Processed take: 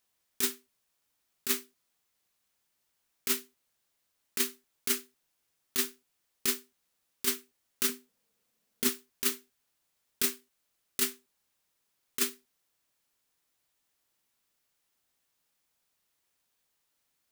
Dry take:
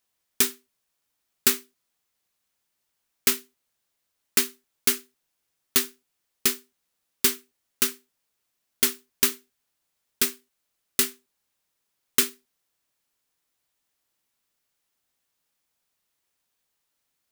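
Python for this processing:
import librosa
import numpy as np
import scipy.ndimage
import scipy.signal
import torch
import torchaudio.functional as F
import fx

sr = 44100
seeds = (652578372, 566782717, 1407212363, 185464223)

y = fx.over_compress(x, sr, threshold_db=-22.0, ratio=-0.5)
y = fx.small_body(y, sr, hz=(210.0, 460.0), ring_ms=35, db=11, at=(7.89, 8.89))
y = y * 10.0 ** (-3.5 / 20.0)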